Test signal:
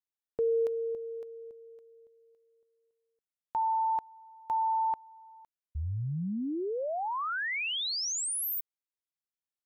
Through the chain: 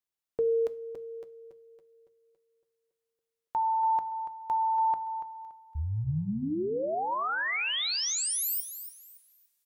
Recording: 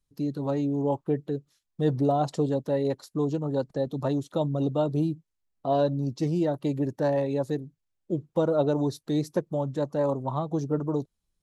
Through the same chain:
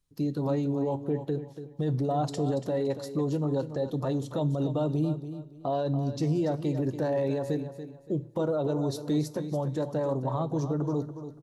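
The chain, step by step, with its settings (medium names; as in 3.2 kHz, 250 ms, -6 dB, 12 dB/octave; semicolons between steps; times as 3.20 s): hum notches 60/120/180/240 Hz; peak limiter -23 dBFS; on a send: feedback delay 285 ms, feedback 28%, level -11 dB; on the sum: two-slope reverb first 0.35 s, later 2.7 s, from -21 dB, DRR 13.5 dB; trim +2 dB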